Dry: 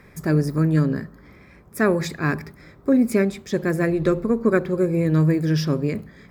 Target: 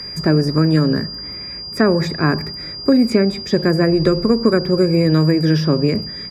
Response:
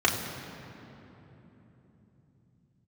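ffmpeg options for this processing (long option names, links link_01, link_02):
-filter_complex "[0:a]acrossover=split=240|1500|6500[link_01][link_02][link_03][link_04];[link_01]acompressor=threshold=-27dB:ratio=4[link_05];[link_02]acompressor=threshold=-23dB:ratio=4[link_06];[link_03]acompressor=threshold=-43dB:ratio=4[link_07];[link_04]acompressor=threshold=-58dB:ratio=4[link_08];[link_05][link_06][link_07][link_08]amix=inputs=4:normalize=0,aeval=exprs='val(0)+0.0141*sin(2*PI*4800*n/s)':channel_layout=same,aresample=32000,aresample=44100,volume=9dB"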